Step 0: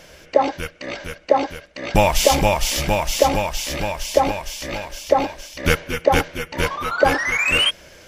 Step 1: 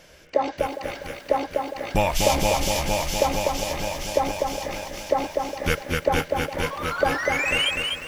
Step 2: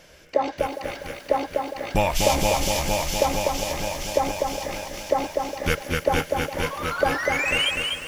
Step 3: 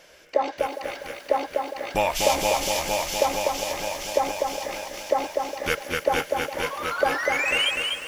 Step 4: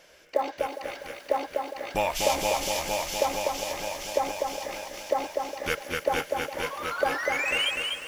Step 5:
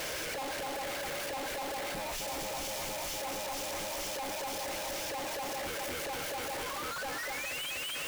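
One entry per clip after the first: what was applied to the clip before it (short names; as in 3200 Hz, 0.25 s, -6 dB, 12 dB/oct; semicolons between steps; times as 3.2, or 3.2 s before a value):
echo with dull and thin repeats by turns 0.408 s, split 1900 Hz, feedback 55%, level -14 dB; lo-fi delay 0.247 s, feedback 35%, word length 7-bit, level -3.5 dB; gain -6 dB
thin delay 0.145 s, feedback 78%, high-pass 5300 Hz, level -9.5 dB
tone controls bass -12 dB, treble -1 dB
short-mantissa float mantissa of 4-bit; gain -3.5 dB
infinite clipping; on a send at -15 dB: reverb RT60 0.15 s, pre-delay 3 ms; on the sum: gain -8 dB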